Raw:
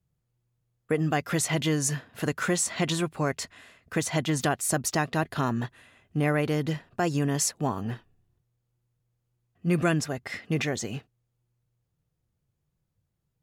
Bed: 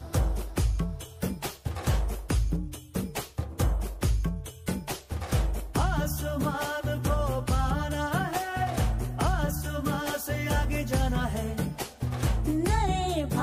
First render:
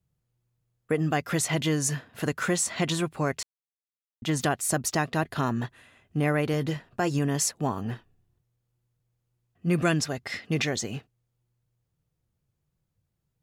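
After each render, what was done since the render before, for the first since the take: 3.43–4.22 s: mute; 6.52–7.19 s: doubling 15 ms -11 dB; 9.75–10.81 s: dynamic bell 4.5 kHz, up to +6 dB, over -48 dBFS, Q 1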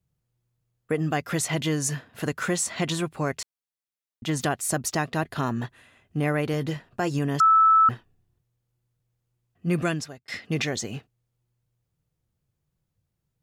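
7.40–7.89 s: bleep 1.31 kHz -13.5 dBFS; 9.77–10.28 s: fade out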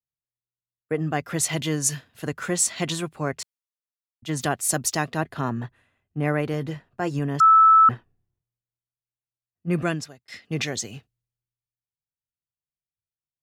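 three bands expanded up and down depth 70%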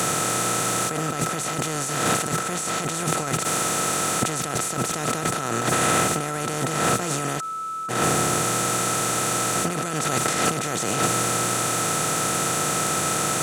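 spectral levelling over time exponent 0.2; compressor with a negative ratio -24 dBFS, ratio -1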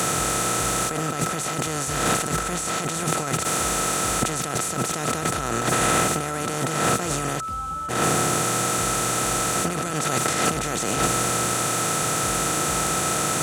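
add bed -12 dB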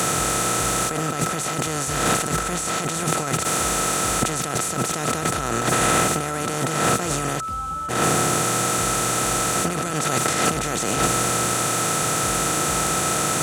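trim +1.5 dB

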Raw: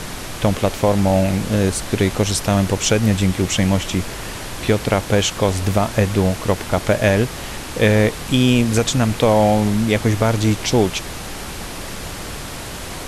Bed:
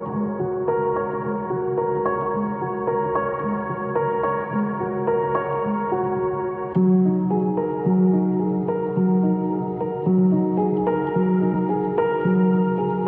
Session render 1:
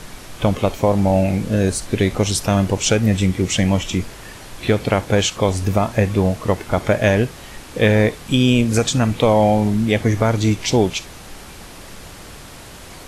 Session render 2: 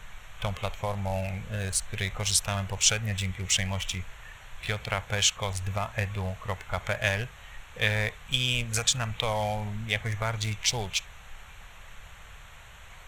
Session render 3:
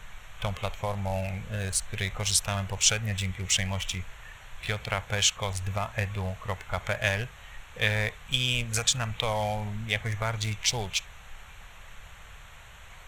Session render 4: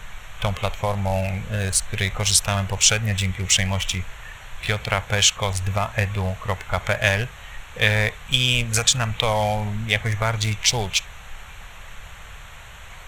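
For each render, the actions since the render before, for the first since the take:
noise print and reduce 8 dB
local Wiener filter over 9 samples; amplifier tone stack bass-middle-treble 10-0-10
no audible change
trim +7.5 dB; peak limiter -3 dBFS, peak gain reduction 3 dB

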